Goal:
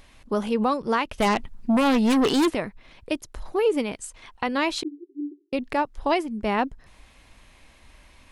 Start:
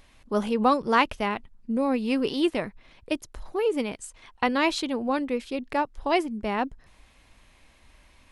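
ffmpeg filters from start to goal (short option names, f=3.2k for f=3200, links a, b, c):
-filter_complex "[0:a]alimiter=limit=-17.5dB:level=0:latency=1:release=346,asettb=1/sr,asplit=3[a][b][c];[a]atrim=end=1.184[d];[b]atrim=start=1.18:end=2.55,asetpts=PTS-STARTPTS,afade=t=in:d=0.004:c=qsin,afade=t=out:st=1.366:d=0.004:c=qsin,aeval=exprs='0.133*(cos(1*acos(clip(val(0)/0.133,-1,1)))-cos(1*PI/2))+0.0473*(cos(5*acos(clip(val(0)/0.133,-1,1)))-cos(5*PI/2))':c=same[e];[c]atrim=start=2.546[f];[d][e]acrossfade=d=0.004:c1=hsin:c2=qsin[g];[g][f]acrossfade=d=0.004:c1=qsin:c2=hsin,asettb=1/sr,asplit=3[h][i][j];[h]atrim=end=4.834[k];[i]atrim=start=4.83:end=5.53,asetpts=PTS-STARTPTS,afade=t=in:d=0.004:c=qsin,afade=t=out:st=0.696:d=0.004:c=qsin,asuperpass=centerf=340:order=20:qfactor=3.1[l];[j]atrim=start=5.526[m];[k][l]acrossfade=d=0.004:c1=hsin:c2=qsin[n];[n][m]acrossfade=d=0.004:c1=qsin:c2=hsin,volume=4dB"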